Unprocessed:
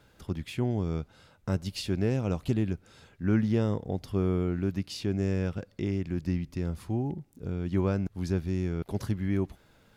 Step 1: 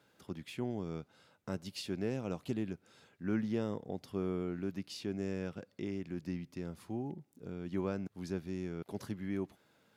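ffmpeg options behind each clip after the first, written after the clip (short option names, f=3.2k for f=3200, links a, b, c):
-af "highpass=170,volume=-6.5dB"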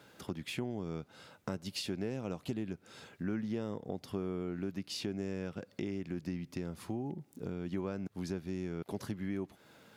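-af "acompressor=threshold=-47dB:ratio=3,volume=10dB"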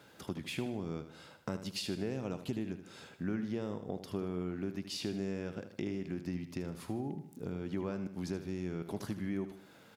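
-af "aecho=1:1:77|154|231|308|385:0.282|0.127|0.0571|0.0257|0.0116"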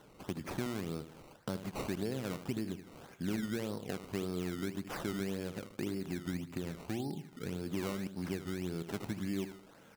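-af "acrusher=samples=18:mix=1:aa=0.000001:lfo=1:lforange=18:lforate=1.8"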